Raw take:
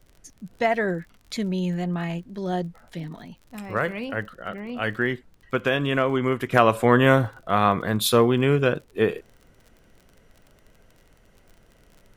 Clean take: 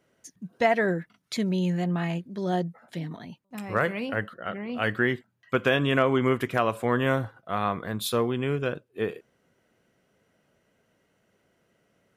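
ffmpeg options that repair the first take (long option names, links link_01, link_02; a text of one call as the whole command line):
ffmpeg -i in.wav -af "adeclick=threshold=4,agate=range=-21dB:threshold=-49dB,asetnsamples=nb_out_samples=441:pad=0,asendcmd='6.52 volume volume -7.5dB',volume=0dB" out.wav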